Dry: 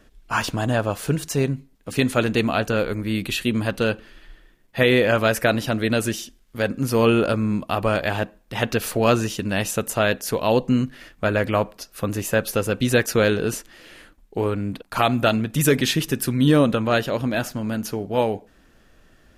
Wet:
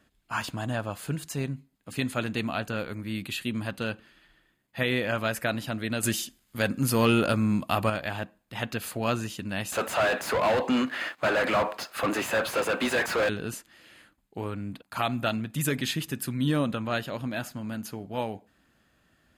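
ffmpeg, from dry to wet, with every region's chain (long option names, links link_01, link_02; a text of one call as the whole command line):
ffmpeg -i in.wav -filter_complex "[0:a]asettb=1/sr,asplit=3[link_01][link_02][link_03];[link_01]atrim=end=6.034[link_04];[link_02]atrim=start=6.03:end=7.9,asetpts=PTS-STARTPTS,afade=type=in:duration=0.004:curve=qsin,afade=type=out:start_time=1.866:duration=0.004:curve=qsin,highshelf=frequency=4900:gain=5.5,acontrast=63[link_05];[link_03]atrim=start=7.896[link_06];[link_04][link_05]acrossfade=duration=0.004:curve1=hsin:curve2=qsin[link_07];[link_07][link_06]acrossfade=duration=0.004:curve1=qsin:curve2=hsin,asettb=1/sr,asplit=3[link_08][link_09][link_10];[link_08]atrim=end=9.724[link_11];[link_09]atrim=start=9.72:end=13.29,asetpts=PTS-STARTPTS,afade=type=in:duration=0.004:curve=qsin,afade=type=out:start_time=3.566:duration=0.004:curve=qsin,highpass=400,asplit=2[link_12][link_13];[link_13]highpass=frequency=720:poles=1,volume=35dB,asoftclip=type=tanh:threshold=-4.5dB[link_14];[link_12][link_14]amix=inputs=2:normalize=0,lowpass=frequency=1100:poles=1,volume=-6dB,aeval=exprs='sgn(val(0))*max(abs(val(0))-0.00376,0)':channel_layout=same[link_15];[link_10]atrim=start=13.286[link_16];[link_11][link_15]acrossfade=duration=0.004:curve1=hsin:curve2=qsin[link_17];[link_17][link_16]acrossfade=duration=0.004:curve1=qsin:curve2=hsin,highpass=77,equalizer=frequency=440:width=1.8:gain=-6.5,bandreject=frequency=5700:width=7.8,volume=-7.5dB" out.wav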